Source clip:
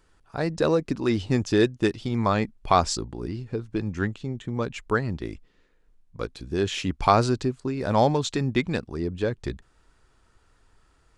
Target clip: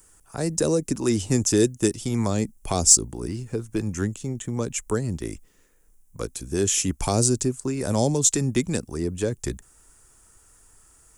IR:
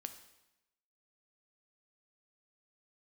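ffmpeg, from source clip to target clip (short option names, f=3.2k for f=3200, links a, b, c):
-filter_complex "[0:a]acrossover=split=280|560|3300[a][b][c][d];[c]acompressor=threshold=-38dB:ratio=6[e];[a][b][e][d]amix=inputs=4:normalize=0,aexciter=amount=8.1:drive=7.8:freq=6.2k,volume=1.5dB"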